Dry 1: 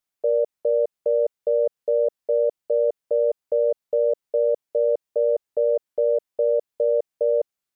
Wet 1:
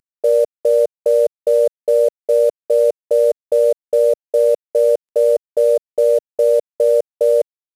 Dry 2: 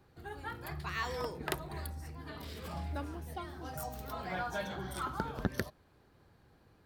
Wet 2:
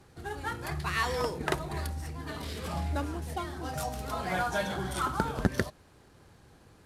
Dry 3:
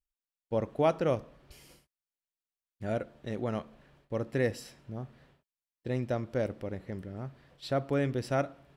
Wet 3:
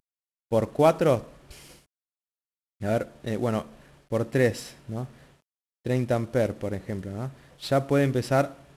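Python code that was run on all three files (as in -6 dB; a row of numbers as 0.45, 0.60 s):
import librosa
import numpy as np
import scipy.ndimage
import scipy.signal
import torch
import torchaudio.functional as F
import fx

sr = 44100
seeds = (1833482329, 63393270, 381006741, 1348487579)

y = fx.cvsd(x, sr, bps=64000)
y = F.gain(torch.from_numpy(y), 7.0).numpy()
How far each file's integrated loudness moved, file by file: +7.0, +7.0, +7.0 LU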